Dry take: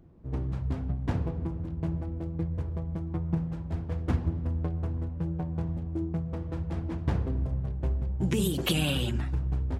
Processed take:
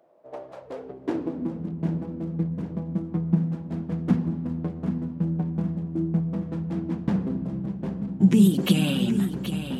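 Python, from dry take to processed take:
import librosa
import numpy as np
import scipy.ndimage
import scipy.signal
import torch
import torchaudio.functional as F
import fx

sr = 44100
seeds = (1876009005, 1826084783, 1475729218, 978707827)

y = fx.filter_sweep_highpass(x, sr, from_hz=610.0, to_hz=200.0, start_s=0.53, end_s=1.63, q=6.6)
y = fx.echo_feedback(y, sr, ms=776, feedback_pct=48, wet_db=-10.0)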